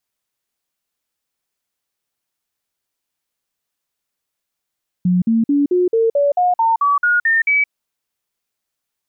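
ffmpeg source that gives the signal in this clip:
-f lavfi -i "aevalsrc='0.266*clip(min(mod(t,0.22),0.17-mod(t,0.22))/0.005,0,1)*sin(2*PI*180*pow(2,floor(t/0.22)/3)*mod(t,0.22))':d=2.64:s=44100"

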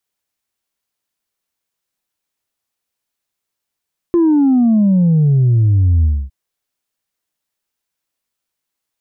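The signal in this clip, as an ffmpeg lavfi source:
-f lavfi -i "aevalsrc='0.355*clip((2.16-t)/0.26,0,1)*tanh(1.12*sin(2*PI*350*2.16/log(65/350)*(exp(log(65/350)*t/2.16)-1)))/tanh(1.12)':d=2.16:s=44100"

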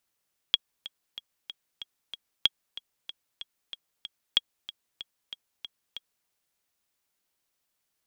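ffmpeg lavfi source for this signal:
-f lavfi -i "aevalsrc='pow(10,(-7-17.5*gte(mod(t,6*60/188),60/188))/20)*sin(2*PI*3300*mod(t,60/188))*exp(-6.91*mod(t,60/188)/0.03)':d=5.74:s=44100"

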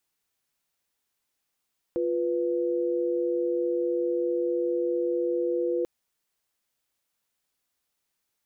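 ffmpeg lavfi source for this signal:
-f lavfi -i "aevalsrc='0.0473*(sin(2*PI*349.23*t)+sin(2*PI*493.88*t))':d=3.89:s=44100"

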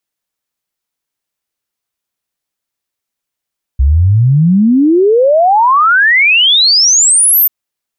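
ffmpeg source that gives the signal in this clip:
-f lavfi -i "aevalsrc='0.562*clip(min(t,3.69-t)/0.01,0,1)*sin(2*PI*63*3.69/log(14000/63)*(exp(log(14000/63)*t/3.69)-1))':d=3.69:s=44100"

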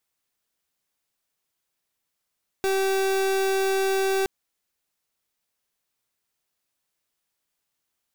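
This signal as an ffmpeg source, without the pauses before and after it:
-f lavfi -i "aevalsrc='0.0708*(2*lt(mod(386*t,1),0.37)-1)':d=1.62:s=44100"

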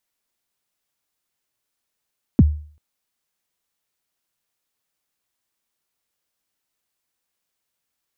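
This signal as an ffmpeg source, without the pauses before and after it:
-f lavfi -i "aevalsrc='0.562*pow(10,-3*t/0.46)*sin(2*PI*(310*0.034/log(75/310)*(exp(log(75/310)*min(t,0.034)/0.034)-1)+75*max(t-0.034,0)))':d=0.39:s=44100"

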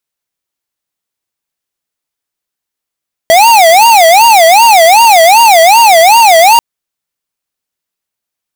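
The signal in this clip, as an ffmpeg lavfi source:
-f lavfi -i "aevalsrc='0.668*(2*lt(mod((793.5*t-143.5/(2*PI*2.6)*sin(2*PI*2.6*t)),1),0.5)-1)':d=3.29:s=44100"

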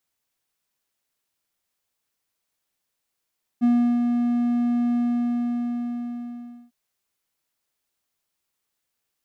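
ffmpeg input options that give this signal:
-f lavfi -i "aevalsrc='0.237*(1-4*abs(mod(240*t+0.25,1)-0.5))':d=3.1:s=44100,afade=t=in:d=0.028,afade=t=out:st=0.028:d=0.349:silence=0.596,afade=t=out:st=1.34:d=1.76"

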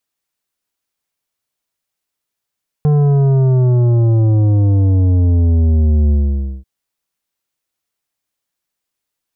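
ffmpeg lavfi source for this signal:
-f lavfi -i "aevalsrc='0.316*clip((3.79-t)/0.53,0,1)*tanh(3.16*sin(2*PI*150*3.79/log(65/150)*(exp(log(65/150)*t/3.79)-1)))/tanh(3.16)':d=3.79:s=44100"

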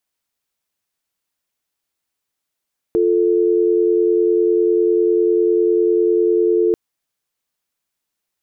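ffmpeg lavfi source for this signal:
-f lavfi -i "aevalsrc='0.178*(sin(2*PI*350*t)+sin(2*PI*440*t))':d=3.79:s=44100"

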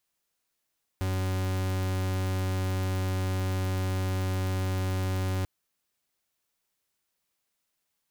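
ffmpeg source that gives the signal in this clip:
-f lavfi -i "aevalsrc='0.0376*(2*lt(mod(93.9*t,1),0.42)-1)':d=4.44:s=44100"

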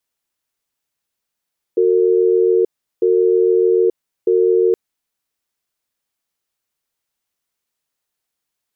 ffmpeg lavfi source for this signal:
-f lavfi -i "aevalsrc='0.211*(sin(2*PI*367*t)+sin(2*PI*454*t))*clip(min(mod(t,1.25),0.88-mod(t,1.25))/0.005,0,1)':d=2.97:s=44100"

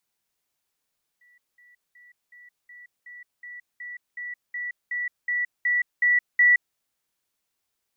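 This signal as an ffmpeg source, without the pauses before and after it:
-f lavfi -i "aevalsrc='pow(10,(-55.5+3*floor(t/0.37))/20)*sin(2*PI*1950*t)*clip(min(mod(t,0.37),0.17-mod(t,0.37))/0.005,0,1)':d=5.55:s=44100"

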